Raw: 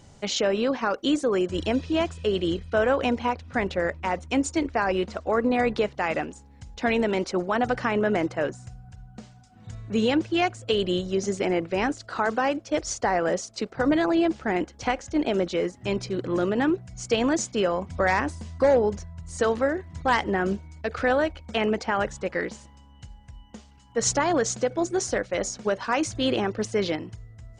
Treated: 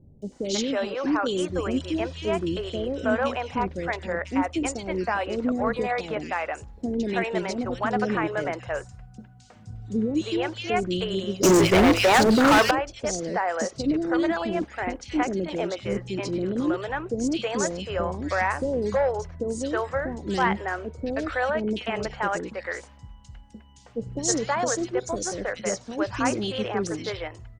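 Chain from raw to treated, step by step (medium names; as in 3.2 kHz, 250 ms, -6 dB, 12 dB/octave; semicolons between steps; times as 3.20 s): three bands offset in time lows, highs, mids 220/320 ms, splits 470/2900 Hz; 11.43–12.71 s: waveshaping leveller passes 5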